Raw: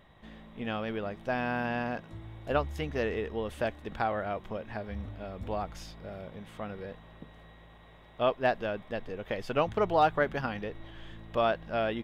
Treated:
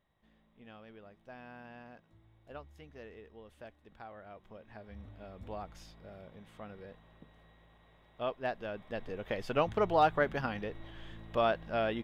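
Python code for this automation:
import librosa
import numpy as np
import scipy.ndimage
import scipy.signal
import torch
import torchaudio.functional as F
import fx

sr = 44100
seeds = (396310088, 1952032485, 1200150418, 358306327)

y = fx.gain(x, sr, db=fx.line((4.06, -19.0), (5.22, -8.5), (8.56, -8.5), (9.09, -2.0)))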